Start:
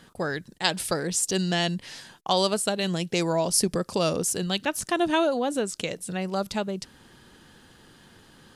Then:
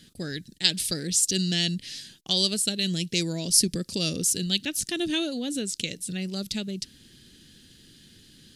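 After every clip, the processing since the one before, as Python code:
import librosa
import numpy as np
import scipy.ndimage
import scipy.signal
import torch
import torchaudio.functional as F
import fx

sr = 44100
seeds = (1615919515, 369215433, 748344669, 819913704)

y = fx.curve_eq(x, sr, hz=(290.0, 1000.0, 1800.0, 4000.0, 8000.0), db=(0, -23, -5, 6, 3))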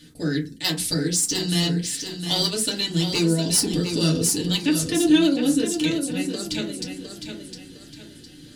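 y = 10.0 ** (-16.0 / 20.0) * np.tanh(x / 10.0 ** (-16.0 / 20.0))
y = fx.echo_feedback(y, sr, ms=709, feedback_pct=35, wet_db=-7.5)
y = fx.rev_fdn(y, sr, rt60_s=0.32, lf_ratio=1.0, hf_ratio=0.4, size_ms=20.0, drr_db=-5.0)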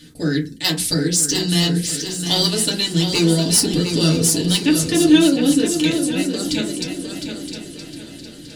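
y = fx.echo_feedback(x, sr, ms=969, feedback_pct=36, wet_db=-12)
y = F.gain(torch.from_numpy(y), 4.5).numpy()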